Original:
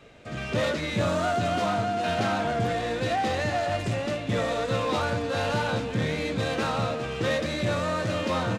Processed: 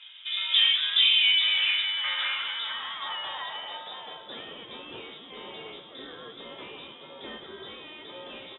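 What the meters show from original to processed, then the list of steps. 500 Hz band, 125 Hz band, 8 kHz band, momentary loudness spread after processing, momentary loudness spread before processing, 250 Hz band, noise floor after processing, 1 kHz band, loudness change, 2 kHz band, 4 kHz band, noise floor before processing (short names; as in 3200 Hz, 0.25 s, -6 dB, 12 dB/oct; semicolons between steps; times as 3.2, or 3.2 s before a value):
-19.0 dB, -31.5 dB, under -40 dB, 22 LU, 3 LU, -20.5 dB, -48 dBFS, -12.5 dB, +4.0 dB, 0.0 dB, +12.5 dB, -34 dBFS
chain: inverted band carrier 3700 Hz; band-pass sweep 2800 Hz -> 380 Hz, 1.12–4.86; gain +6.5 dB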